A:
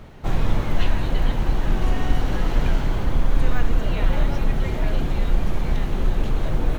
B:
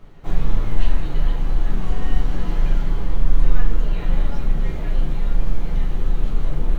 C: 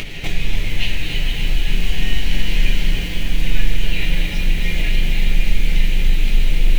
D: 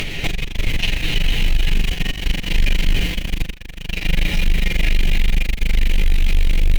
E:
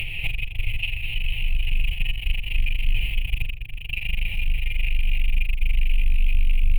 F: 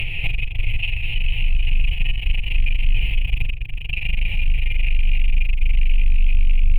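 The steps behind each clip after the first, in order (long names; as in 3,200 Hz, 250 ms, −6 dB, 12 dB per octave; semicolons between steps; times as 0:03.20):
rectangular room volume 47 cubic metres, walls mixed, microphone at 0.68 metres; level −9 dB
high shelf with overshoot 1,700 Hz +12.5 dB, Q 3; upward compression, threshold −12 dBFS; feedback echo at a low word length 288 ms, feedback 80%, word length 6 bits, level −7 dB; level −1.5 dB
tube saturation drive 14 dB, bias 0.3; level +5.5 dB
drawn EQ curve 120 Hz 0 dB, 180 Hz −16 dB, 280 Hz −20 dB, 830 Hz −11 dB, 1,600 Hz −21 dB, 2,600 Hz +7 dB, 4,000 Hz −17 dB, 6,200 Hz −29 dB, 10,000 Hz −3 dB; speech leveller within 5 dB 0.5 s; on a send: bucket-brigade delay 286 ms, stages 1,024, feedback 81%, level −13.5 dB; on the sum: level −6.5 dB
low-pass filter 2,400 Hz 6 dB per octave; in parallel at 0 dB: brickwall limiter −18 dBFS, peak gain reduction 8 dB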